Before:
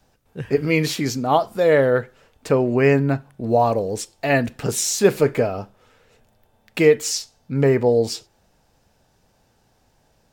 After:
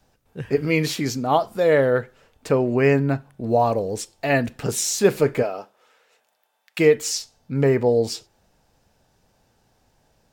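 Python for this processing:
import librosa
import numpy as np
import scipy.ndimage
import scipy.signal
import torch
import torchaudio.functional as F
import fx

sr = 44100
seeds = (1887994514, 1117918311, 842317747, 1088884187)

y = fx.highpass(x, sr, hz=fx.line((5.42, 330.0), (6.78, 1200.0)), slope=12, at=(5.42, 6.78), fade=0.02)
y = F.gain(torch.from_numpy(y), -1.5).numpy()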